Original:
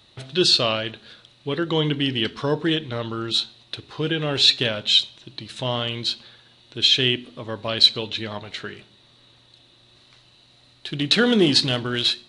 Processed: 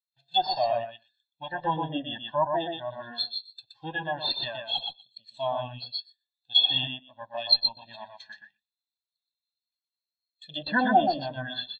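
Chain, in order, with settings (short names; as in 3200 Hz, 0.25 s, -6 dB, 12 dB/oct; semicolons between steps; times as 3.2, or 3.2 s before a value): minimum comb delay 1.2 ms; speed mistake 24 fps film run at 25 fps; notch 1200 Hz, Q 11; on a send: feedback echo 0.122 s, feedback 20%, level -3 dB; on the sum: dynamic EQ 2200 Hz, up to -5 dB, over -39 dBFS, Q 2.8; in parallel at -11 dB: overloaded stage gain 18.5 dB; on the sum: treble ducked by the level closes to 2100 Hz, closed at -17.5 dBFS; overdrive pedal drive 18 dB, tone 5700 Hz, clips at -1.5 dBFS; high shelf 4700 Hz +11 dB; spectral expander 2.5:1; gain -7 dB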